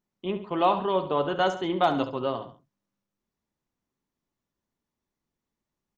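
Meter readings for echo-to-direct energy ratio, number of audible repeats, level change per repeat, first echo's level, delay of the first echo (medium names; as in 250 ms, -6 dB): -11.0 dB, 2, -6.0 dB, -12.0 dB, 69 ms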